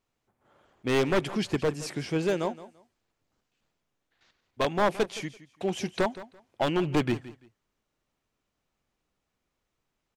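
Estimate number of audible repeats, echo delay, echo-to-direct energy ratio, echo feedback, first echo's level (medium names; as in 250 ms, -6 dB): 2, 169 ms, -16.5 dB, 21%, -16.5 dB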